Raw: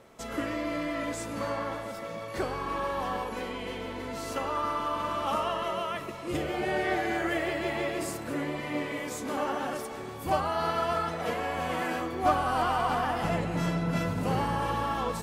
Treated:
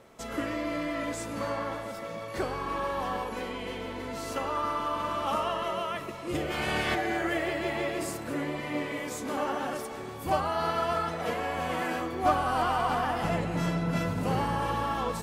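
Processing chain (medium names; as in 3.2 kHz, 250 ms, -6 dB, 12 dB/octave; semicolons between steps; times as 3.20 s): 6.50–6.94 s: spectral peaks clipped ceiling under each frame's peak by 18 dB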